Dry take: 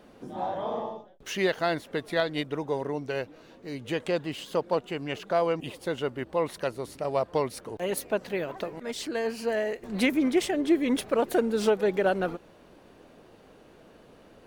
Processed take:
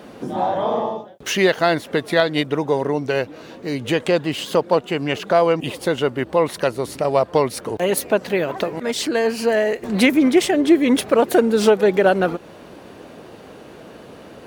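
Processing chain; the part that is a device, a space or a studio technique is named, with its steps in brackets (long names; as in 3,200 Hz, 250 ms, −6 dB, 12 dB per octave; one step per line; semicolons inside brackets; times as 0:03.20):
high-pass filter 72 Hz
parallel compression (in parallel at −1 dB: downward compressor, threshold −36 dBFS, peak gain reduction 17 dB)
on the sum: level +8 dB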